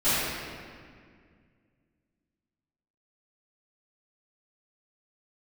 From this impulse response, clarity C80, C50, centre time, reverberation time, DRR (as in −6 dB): −2.5 dB, −5.0 dB, 153 ms, 2.0 s, −20.5 dB